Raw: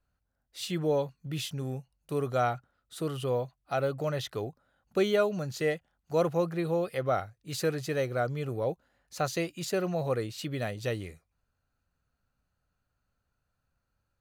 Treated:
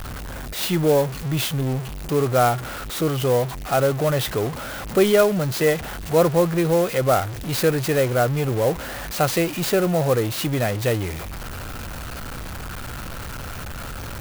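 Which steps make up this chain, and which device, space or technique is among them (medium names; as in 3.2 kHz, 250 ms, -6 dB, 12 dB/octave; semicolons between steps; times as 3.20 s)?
early CD player with a faulty converter (jump at every zero crossing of -34 dBFS; sampling jitter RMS 0.036 ms); trim +8.5 dB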